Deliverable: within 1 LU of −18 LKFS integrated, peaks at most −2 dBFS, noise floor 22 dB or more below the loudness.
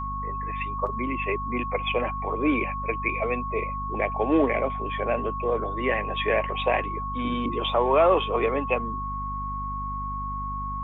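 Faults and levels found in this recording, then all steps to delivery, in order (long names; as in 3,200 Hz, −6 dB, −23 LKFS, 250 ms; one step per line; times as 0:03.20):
mains hum 50 Hz; hum harmonics up to 250 Hz; level of the hum −32 dBFS; interfering tone 1,100 Hz; level of the tone −30 dBFS; integrated loudness −26.5 LKFS; sample peak −9.0 dBFS; target loudness −18.0 LKFS
→ mains-hum notches 50/100/150/200/250 Hz
notch filter 1,100 Hz, Q 30
level +8.5 dB
brickwall limiter −2 dBFS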